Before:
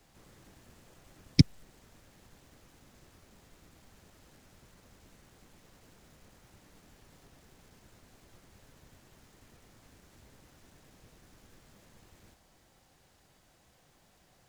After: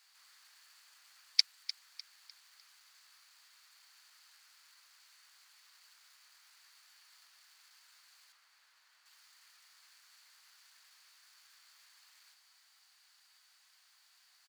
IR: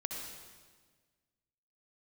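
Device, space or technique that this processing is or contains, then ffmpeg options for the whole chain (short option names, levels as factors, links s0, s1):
headphones lying on a table: -filter_complex "[0:a]asettb=1/sr,asplit=3[s0][s1][s2];[s0]atrim=end=8.324[s3];[s1]atrim=start=8.32:end=9.06,asetpts=PTS-STARTPTS,afade=t=in:d=0.004:c=qsin,afade=t=out:st=0.736:d=0.004:c=qsin,highshelf=f=3300:g=-9.5[s4];[s2]atrim=start=9.056[s5];[s3][s4]acrossfade=d=0.004:c1=hsin:c2=qsin[s6];[s6][s5]acrossfade=d=0.004:c1=qsin:c2=hsin,highpass=f=1200:w=0.5412,highpass=f=1200:w=1.3066,equalizer=f=4500:t=o:w=0.21:g=11,aecho=1:1:301|602|903|1204:0.2|0.0738|0.0273|0.0101"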